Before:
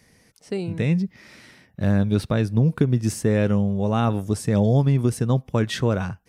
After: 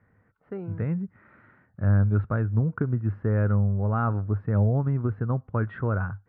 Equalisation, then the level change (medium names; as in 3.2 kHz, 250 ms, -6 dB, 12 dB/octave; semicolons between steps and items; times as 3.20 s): resonant low-pass 1.4 kHz, resonance Q 4.3; distance through air 480 m; peaking EQ 100 Hz +10.5 dB 0.34 oct; -7.5 dB